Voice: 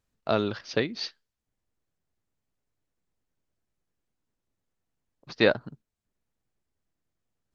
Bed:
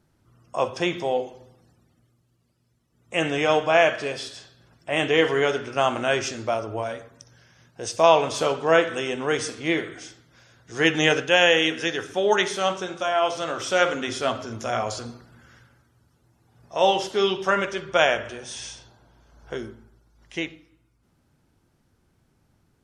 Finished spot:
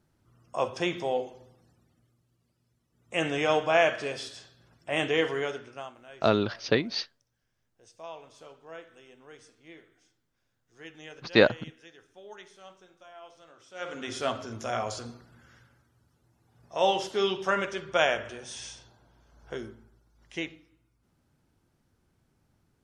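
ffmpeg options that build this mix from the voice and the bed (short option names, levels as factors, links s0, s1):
-filter_complex "[0:a]adelay=5950,volume=1.26[s0];[1:a]volume=7.08,afade=t=out:st=4.98:d=0.96:silence=0.0794328,afade=t=in:st=13.74:d=0.46:silence=0.0841395[s1];[s0][s1]amix=inputs=2:normalize=0"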